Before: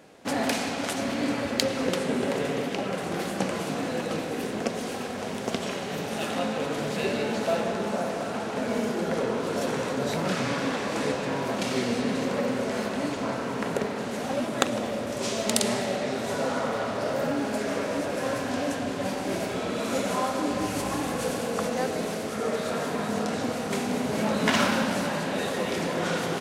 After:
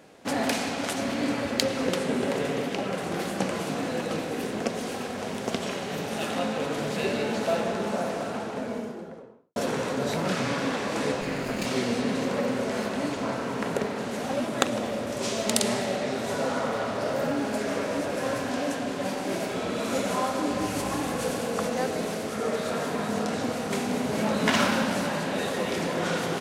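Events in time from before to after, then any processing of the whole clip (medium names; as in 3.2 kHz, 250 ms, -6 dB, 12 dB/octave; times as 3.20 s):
8.09–9.56 s: studio fade out
11.21–11.66 s: comb filter that takes the minimum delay 0.42 ms
18.49–19.57 s: peaking EQ 79 Hz -11.5 dB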